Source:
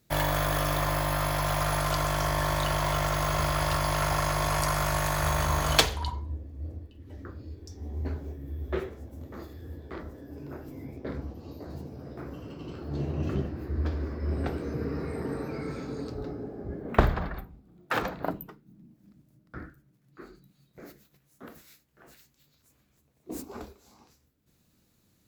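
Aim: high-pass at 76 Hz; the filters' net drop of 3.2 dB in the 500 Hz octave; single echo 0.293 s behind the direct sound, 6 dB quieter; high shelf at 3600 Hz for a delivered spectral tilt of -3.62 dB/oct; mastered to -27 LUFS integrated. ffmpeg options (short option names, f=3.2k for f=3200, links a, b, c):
-af "highpass=76,equalizer=f=500:t=o:g=-4.5,highshelf=f=3.6k:g=5,aecho=1:1:293:0.501,volume=1dB"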